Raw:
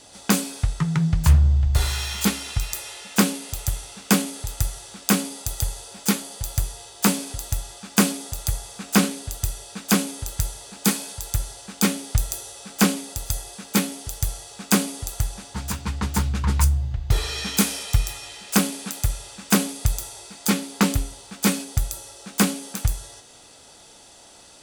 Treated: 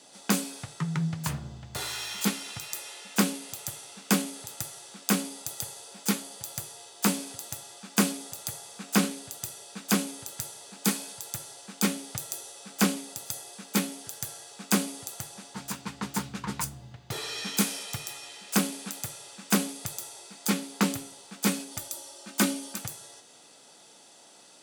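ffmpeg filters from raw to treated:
ffmpeg -i in.wav -filter_complex "[0:a]asettb=1/sr,asplit=3[link_01][link_02][link_03];[link_01]atrim=end=14.034[link_04];[link_02]atrim=start=14.03:end=14.52,asetpts=PTS-STARTPTS,afade=type=in:duration=0.004:curve=qsin,afade=type=out:start_time=0.486:duration=0.004:curve=qsin,equalizer=frequency=1600:width=6.8:gain=6.5[link_05];[link_03]atrim=start=14.516[link_06];[link_04][link_05]acrossfade=duration=0.004:curve1=hsin:curve2=qsin[link_07];[link_07][link_06]acrossfade=duration=0.004:curve1=qsin:curve2=hsin,asettb=1/sr,asplit=3[link_08][link_09][link_10];[link_08]atrim=end=21.714[link_11];[link_09]atrim=start=21.71:end=22.78,asetpts=PTS-STARTPTS,afade=type=in:duration=0.004:curve=qsin,afade=type=out:start_time=1.066:duration=0.004:curve=qsin,aecho=1:1:3.3:0.65,atrim=end_sample=47187[link_12];[link_10]atrim=start=22.776[link_13];[link_11][link_12]acrossfade=duration=0.004:curve1=hsin:curve2=qsin[link_14];[link_14][link_13]acrossfade=duration=0.004:curve1=qsin:curve2=hsin,highpass=frequency=150:width=0.5412,highpass=frequency=150:width=1.3066,volume=-5.5dB" out.wav

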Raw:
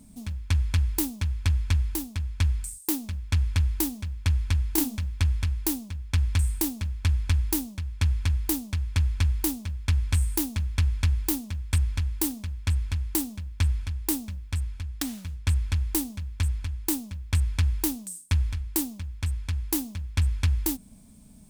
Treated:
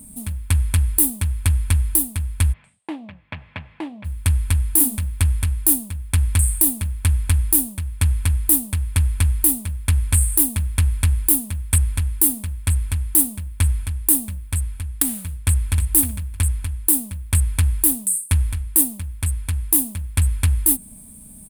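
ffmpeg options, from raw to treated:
ffmpeg -i in.wav -filter_complex "[0:a]asplit=3[link_01][link_02][link_03];[link_01]afade=type=out:start_time=2.52:duration=0.02[link_04];[link_02]highpass=frequency=150:width=0.5412,highpass=frequency=150:width=1.3066,equalizer=frequency=260:width_type=q:width=4:gain=-7,equalizer=frequency=370:width_type=q:width=4:gain=-9,equalizer=frequency=630:width_type=q:width=4:gain=7,equalizer=frequency=1400:width_type=q:width=4:gain=-5,lowpass=frequency=2800:width=0.5412,lowpass=frequency=2800:width=1.3066,afade=type=in:start_time=2.52:duration=0.02,afade=type=out:start_time=4.04:duration=0.02[link_05];[link_03]afade=type=in:start_time=4.04:duration=0.02[link_06];[link_04][link_05][link_06]amix=inputs=3:normalize=0,asplit=2[link_07][link_08];[link_08]afade=type=in:start_time=15.39:duration=0.01,afade=type=out:start_time=15.86:duration=0.01,aecho=0:1:310|620|930:0.354813|0.0709627|0.0141925[link_09];[link_07][link_09]amix=inputs=2:normalize=0,highshelf=frequency=7600:width_type=q:width=3:gain=10,alimiter=level_in=6.5dB:limit=-1dB:release=50:level=0:latency=1,volume=-1dB" out.wav

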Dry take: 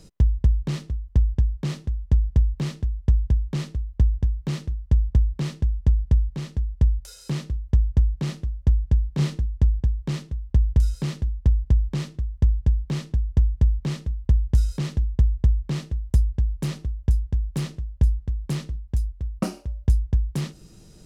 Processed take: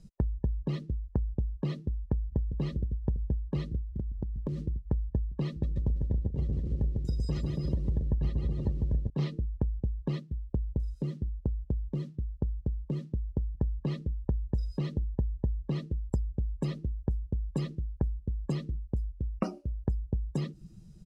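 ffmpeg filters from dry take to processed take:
ffmpeg -i in.wav -filter_complex "[0:a]asplit=2[link_01][link_02];[link_02]afade=type=in:start_time=1.92:duration=0.01,afade=type=out:start_time=2.58:duration=0.01,aecho=0:1:400|800|1200|1600|2000|2400|2800|3200|3600|4000|4400|4800:0.334965|0.267972|0.214378|0.171502|0.137202|0.109761|0.0878092|0.0702473|0.0561979|0.0449583|0.0359666|0.0287733[link_03];[link_01][link_03]amix=inputs=2:normalize=0,asettb=1/sr,asplit=3[link_04][link_05][link_06];[link_04]atrim=end=3.904[link_07];[link_05]atrim=start=3.9:end=4.59,asetpts=PTS-STARTPTS,afade=type=in:duration=0.004:curve=qsin,afade=type=out:start_time=0.686:duration=0.004:curve=qsin,acompressor=threshold=-29dB:ratio=10:attack=3.2:release=140:knee=1:detection=peak[link_08];[link_06]atrim=start=4.586[link_09];[link_07][link_08]acrossfade=duration=0.004:curve1=hsin:curve2=qsin[link_10];[link_10][link_09]acrossfade=duration=0.004:curve1=qsin:curve2=hsin,asettb=1/sr,asplit=3[link_11][link_12][link_13];[link_11]atrim=end=5.484[link_14];[link_12]atrim=start=5.48:end=9.1,asetpts=PTS-STARTPTS,afade=type=in:duration=0.004:curve=qsin,afade=type=out:start_time=3.616:duration=0.004:curve=qsin,aecho=1:1:150|277.5|385.9|478|556.3|622.9|679.4|727.5|768.4:0.794|0.631|0.501|0.398|0.316|0.251|0.2|0.158|0.126,atrim=end_sample=159642[link_15];[link_13]atrim=start=9.096[link_16];[link_14][link_15]acrossfade=duration=0.004:curve1=hsin:curve2=qsin[link_17];[link_17][link_16]acrossfade=duration=0.004:curve1=qsin:curve2=hsin,asplit=3[link_18][link_19][link_20];[link_18]atrim=end=10.202[link_21];[link_19]atrim=start=10.198:end=13.552,asetpts=PTS-STARTPTS,volume=-4dB[link_22];[link_20]atrim=start=13.548[link_23];[link_21][link_22]acrossfade=duration=0.004:curve1=hsin:curve2=hsin[link_24];[link_24][link_23]acrossfade=duration=0.004:curve1=hsin:curve2=hsin,afftdn=noise_reduction=23:noise_floor=-37,lowshelf=frequency=140:gain=-9,acompressor=threshold=-38dB:ratio=3,volume=7.5dB" out.wav

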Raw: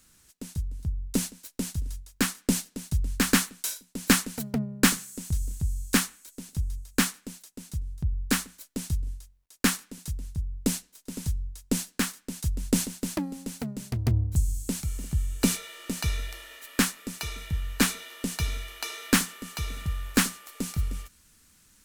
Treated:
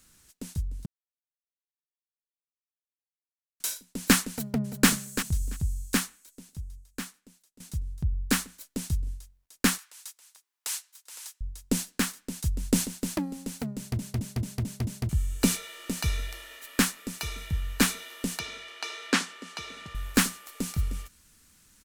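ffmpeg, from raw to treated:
ffmpeg -i in.wav -filter_complex "[0:a]asplit=2[link_01][link_02];[link_02]afade=type=in:start_time=4.3:duration=0.01,afade=type=out:start_time=4.88:duration=0.01,aecho=0:1:340|680:0.354813|0.053222[link_03];[link_01][link_03]amix=inputs=2:normalize=0,asettb=1/sr,asplit=3[link_04][link_05][link_06];[link_04]atrim=end=9.784[link_07];[link_05]atrim=start=9.78:end=11.41,asetpts=PTS-STARTPTS,afade=type=in:duration=0.004:curve=qsin,afade=type=out:start_time=1.626:duration=0.004:curve=qsin,highpass=frequency=880:width=0.5412,highpass=frequency=880:width=1.3066[link_08];[link_06]atrim=start=11.406[link_09];[link_07][link_08]acrossfade=duration=0.004:curve1=hsin:curve2=qsin[link_10];[link_10][link_09]acrossfade=duration=0.004:curve1=qsin:curve2=hsin,asettb=1/sr,asplit=3[link_11][link_12][link_13];[link_11]atrim=end=18.394[link_14];[link_12]atrim=start=18.39:end=19.95,asetpts=PTS-STARTPTS,afade=type=in:duration=0.004:curve=qsin,afade=type=out:start_time=1.556:duration=0.004:curve=qsin,highpass=280,lowpass=5900[link_15];[link_13]atrim=start=19.946[link_16];[link_14][link_15]acrossfade=duration=0.004:curve1=hsin:curve2=qsin[link_17];[link_17][link_16]acrossfade=duration=0.004:curve1=qsin:curve2=hsin,asplit=10[link_18][link_19][link_20][link_21][link_22][link_23][link_24][link_25][link_26][link_27];[link_18]atrim=end=0.86,asetpts=PTS-STARTPTS,afade=type=out:start_time=0.856:duration=0.004:curve=hsin[link_28];[link_19]atrim=start=0.86:end=3.6,asetpts=PTS-STARTPTS,volume=0[link_29];[link_20]atrim=start=3.6:end=7.6,asetpts=PTS-STARTPTS,afade=type=in:duration=0.004:curve=hsin,afade=type=out:start_time=1.96:duration=2.04:curve=qua:silence=0.149624[link_30];[link_21]atrim=start=7.6:end=13.992,asetpts=PTS-STARTPTS,afade=type=in:duration=0.004:curve=hsin:silence=0.149624[link_31];[link_22]atrim=start=13.768:end=13.992[link_32];[link_23]atrim=start=13.768:end=13.992[link_33];[link_24]atrim=start=13.768:end=13.992[link_34];[link_25]atrim=start=13.768:end=13.992[link_35];[link_26]atrim=start=13.768:end=13.992[link_36];[link_27]atrim=start=15.088[link_37];[link_28][link_29][link_30][link_31]concat=n=4:v=0:a=1[link_38];[link_38][link_32]acrossfade=duration=0.004:curve1=hsin:curve2=hsin[link_39];[link_39][link_33]acrossfade=duration=0.004:curve1=hsin:curve2=hsin[link_40];[link_40][link_34]acrossfade=duration=0.004:curve1=hsin:curve2=hsin[link_41];[link_41][link_35]acrossfade=duration=0.004:curve1=hsin:curve2=hsin[link_42];[link_42][link_36]acrossfade=duration=0.004:curve1=hsin:curve2=hsin[link_43];[link_43][link_37]acrossfade=duration=0.004:curve1=hsin:curve2=hsin" out.wav

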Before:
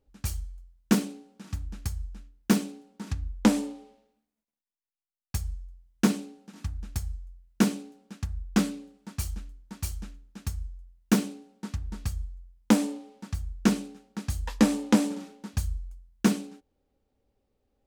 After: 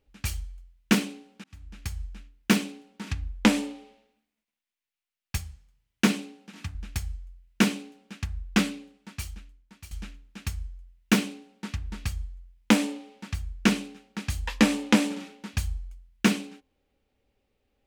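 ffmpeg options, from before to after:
ffmpeg -i in.wav -filter_complex "[0:a]asettb=1/sr,asplit=3[link_01][link_02][link_03];[link_01]atrim=end=5.384[link_04];[link_02]atrim=start=5.38:end=6.75,asetpts=PTS-STARTPTS,afade=type=in:duration=0.004:curve=qsin,afade=type=out:start_time=1.366:duration=0.004:curve=qsin,highpass=frequency=75:width=0.5412,highpass=frequency=75:width=1.3066[link_05];[link_03]atrim=start=6.746[link_06];[link_04][link_05]acrossfade=duration=0.004:curve1=hsin:curve2=qsin[link_07];[link_07][link_06]acrossfade=duration=0.004:curve1=qsin:curve2=hsin,asplit=3[link_08][link_09][link_10];[link_08]atrim=end=1.44,asetpts=PTS-STARTPTS,afade=type=out:start_time=1.436:duration=0.004:curve=hsin[link_11];[link_09]atrim=start=1.44:end=9.91,asetpts=PTS-STARTPTS,afade=type=in:duration=0.58,afade=type=out:start_time=7.14:duration=1.33:silence=0.149624[link_12];[link_10]atrim=start=9.91,asetpts=PTS-STARTPTS,afade=type=in:duration=0.004:curve=hsin:silence=0.149624[link_13];[link_11][link_12][link_13]concat=n=3:v=0:a=1,equalizer=frequency=2500:width_type=o:width=1.4:gain=10.5,bandreject=frequency=264.2:width_type=h:width=4,bandreject=frequency=528.4:width_type=h:width=4,bandreject=frequency=792.6:width_type=h:width=4,bandreject=frequency=1056.8:width_type=h:width=4" out.wav

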